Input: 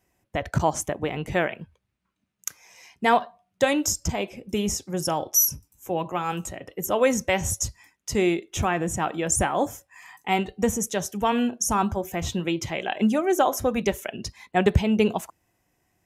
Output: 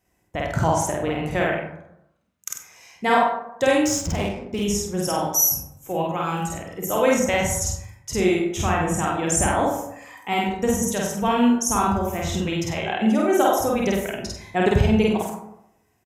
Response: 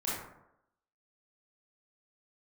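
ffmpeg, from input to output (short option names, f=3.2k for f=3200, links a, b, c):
-filter_complex "[0:a]aecho=1:1:49.56|96.21:1|0.447,asplit=2[a][b];[1:a]atrim=start_sample=2205[c];[b][c]afir=irnorm=-1:irlink=0,volume=-7dB[d];[a][d]amix=inputs=2:normalize=0,asettb=1/sr,asplit=3[e][f][g];[e]atrim=end=3.854[h];[f]atrim=start=3.85:end=4.64,asetpts=PTS-STARTPTS,afade=t=in:d=0.004:c=qsin,afade=t=out:st=0.786:d=0.004:c=qsin,adynamicsmooth=sensitivity=7:basefreq=1.8k[i];[g]atrim=start=4.636[j];[h][i]acrossfade=d=0.004:c1=hsin:c2=qsin[k];[k][j]acrossfade=d=0.004:c1=qsin:c2=hsin,volume=-4dB"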